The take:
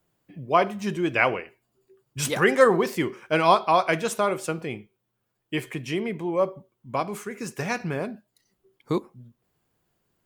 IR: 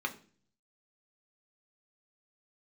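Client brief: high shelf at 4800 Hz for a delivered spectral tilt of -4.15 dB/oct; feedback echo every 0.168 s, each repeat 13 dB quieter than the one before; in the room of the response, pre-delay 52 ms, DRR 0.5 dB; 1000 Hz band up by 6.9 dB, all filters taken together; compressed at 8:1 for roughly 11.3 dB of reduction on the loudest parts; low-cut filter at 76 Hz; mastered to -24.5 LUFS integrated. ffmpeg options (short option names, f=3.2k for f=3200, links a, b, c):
-filter_complex "[0:a]highpass=76,equalizer=f=1k:t=o:g=8.5,highshelf=f=4.8k:g=-5,acompressor=threshold=-19dB:ratio=8,aecho=1:1:168|336|504:0.224|0.0493|0.0108,asplit=2[a][b];[1:a]atrim=start_sample=2205,adelay=52[c];[b][c]afir=irnorm=-1:irlink=0,volume=-5.5dB[d];[a][d]amix=inputs=2:normalize=0"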